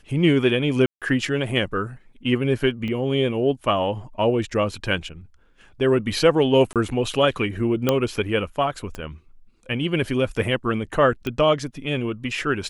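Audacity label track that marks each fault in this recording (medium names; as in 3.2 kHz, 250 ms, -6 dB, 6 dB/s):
0.860000	1.020000	dropout 157 ms
2.880000	2.880000	dropout 2.4 ms
6.730000	6.760000	dropout 27 ms
7.890000	7.890000	pop -5 dBFS
8.950000	8.950000	pop -19 dBFS
11.270000	11.270000	pop -14 dBFS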